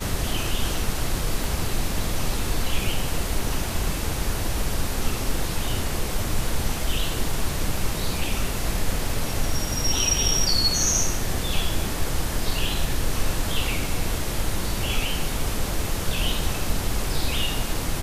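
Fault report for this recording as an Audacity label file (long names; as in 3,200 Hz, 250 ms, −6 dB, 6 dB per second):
1.440000	1.440000	click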